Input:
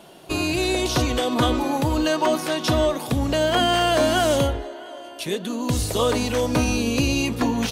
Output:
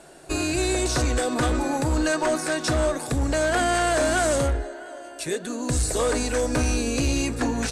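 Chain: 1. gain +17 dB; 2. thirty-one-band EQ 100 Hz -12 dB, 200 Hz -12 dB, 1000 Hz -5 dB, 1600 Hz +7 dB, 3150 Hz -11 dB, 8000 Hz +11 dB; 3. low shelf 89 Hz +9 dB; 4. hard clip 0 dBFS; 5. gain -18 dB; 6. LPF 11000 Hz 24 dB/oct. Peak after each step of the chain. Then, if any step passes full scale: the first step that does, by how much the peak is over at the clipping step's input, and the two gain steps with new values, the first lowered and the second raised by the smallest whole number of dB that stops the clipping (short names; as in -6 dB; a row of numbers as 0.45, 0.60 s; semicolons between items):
+7.5, +8.0, +9.5, 0.0, -18.0, -16.0 dBFS; step 1, 9.5 dB; step 1 +7 dB, step 5 -8 dB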